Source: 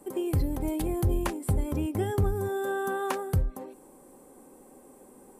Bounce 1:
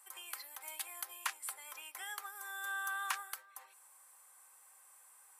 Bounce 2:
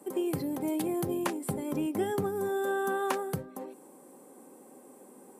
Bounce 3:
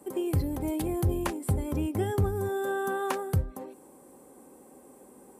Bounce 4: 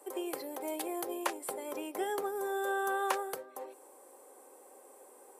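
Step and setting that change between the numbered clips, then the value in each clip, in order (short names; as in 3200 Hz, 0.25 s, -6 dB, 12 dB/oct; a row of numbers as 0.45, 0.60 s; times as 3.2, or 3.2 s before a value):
HPF, cutoff: 1200, 160, 53, 430 Hz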